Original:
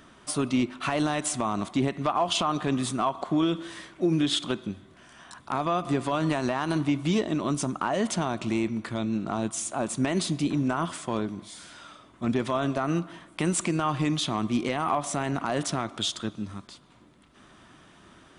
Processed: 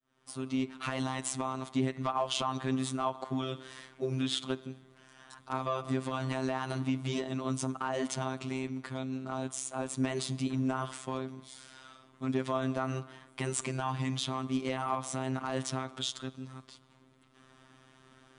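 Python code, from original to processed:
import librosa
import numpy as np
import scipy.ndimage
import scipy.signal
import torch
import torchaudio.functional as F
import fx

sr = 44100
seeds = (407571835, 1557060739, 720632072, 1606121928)

y = fx.fade_in_head(x, sr, length_s=0.78)
y = fx.robotise(y, sr, hz=131.0)
y = F.gain(torch.from_numpy(y), -4.0).numpy()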